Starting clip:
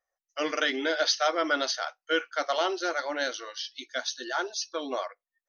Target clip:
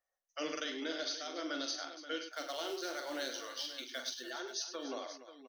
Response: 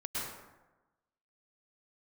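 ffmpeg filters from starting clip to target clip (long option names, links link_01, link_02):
-filter_complex "[0:a]acrossover=split=380|3000[link_01][link_02][link_03];[link_02]acompressor=threshold=-38dB:ratio=4[link_04];[link_01][link_04][link_03]amix=inputs=3:normalize=0,alimiter=limit=-23dB:level=0:latency=1:release=486,asettb=1/sr,asplit=3[link_05][link_06][link_07];[link_05]atrim=end=2.254[link_08];[link_06]atrim=start=2.25:end=4.31,asetpts=PTS-STARTPTS,afade=type=in:duration=0.004:curve=qsin,afade=type=out:start_time=2.056:duration=0.004:curve=qsin,acrusher=bits=4:mode=log:mix=0:aa=0.000001[link_09];[link_07]atrim=start=4.306[link_10];[link_08][link_09]acrossfade=duration=0.004:curve1=hsin:curve2=qsin[link_11];[link_11][link_10]acrossfade=duration=0.004:curve1=qsin:curve2=hsin,aecho=1:1:44|101|289|533:0.422|0.335|0.188|0.237,volume=-5dB"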